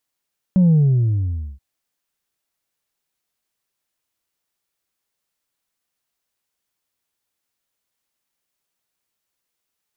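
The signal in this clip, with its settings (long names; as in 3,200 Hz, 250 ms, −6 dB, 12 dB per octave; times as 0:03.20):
bass drop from 190 Hz, over 1.03 s, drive 1.5 dB, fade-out 0.89 s, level −10.5 dB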